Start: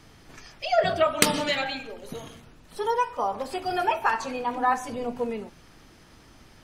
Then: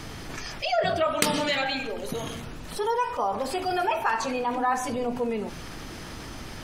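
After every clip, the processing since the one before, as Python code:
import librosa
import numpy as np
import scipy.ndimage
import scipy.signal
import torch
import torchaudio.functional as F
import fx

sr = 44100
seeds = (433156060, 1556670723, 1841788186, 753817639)

y = fx.env_flatten(x, sr, amount_pct=50)
y = y * librosa.db_to_amplitude(-4.5)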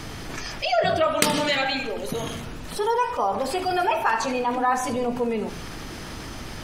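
y = fx.echo_feedback(x, sr, ms=76, feedback_pct=40, wet_db=-16.0)
y = y * librosa.db_to_amplitude(3.0)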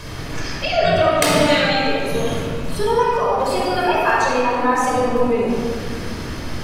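y = fx.room_shoebox(x, sr, seeds[0], volume_m3=3400.0, walls='mixed', distance_m=5.3)
y = y * librosa.db_to_amplitude(-1.5)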